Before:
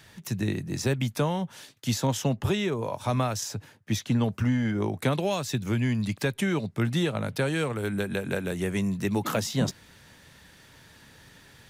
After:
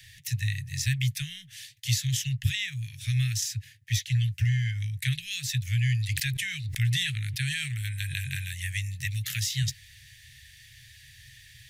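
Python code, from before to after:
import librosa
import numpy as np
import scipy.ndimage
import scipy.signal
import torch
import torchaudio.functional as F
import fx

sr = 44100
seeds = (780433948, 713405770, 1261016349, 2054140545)

y = scipy.signal.sosfilt(scipy.signal.cheby1(5, 1.0, [130.0, 1800.0], 'bandstop', fs=sr, output='sos'), x)
y = fx.sustainer(y, sr, db_per_s=32.0, at=(6.1, 8.49))
y = y * 10.0 ** (4.0 / 20.0)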